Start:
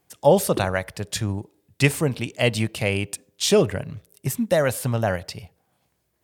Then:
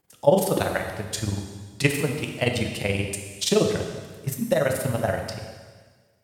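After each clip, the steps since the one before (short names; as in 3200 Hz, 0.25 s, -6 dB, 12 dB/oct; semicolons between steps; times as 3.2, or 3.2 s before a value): AM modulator 21 Hz, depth 80%; plate-style reverb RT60 1.5 s, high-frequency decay 1×, DRR 3 dB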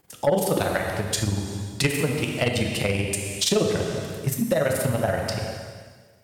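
compressor 2:1, threshold -33 dBFS, peak gain reduction 12 dB; sine folder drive 5 dB, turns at -12.5 dBFS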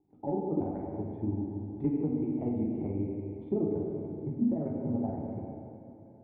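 vocal tract filter u; two-slope reverb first 0.35 s, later 4.4 s, from -17 dB, DRR 0 dB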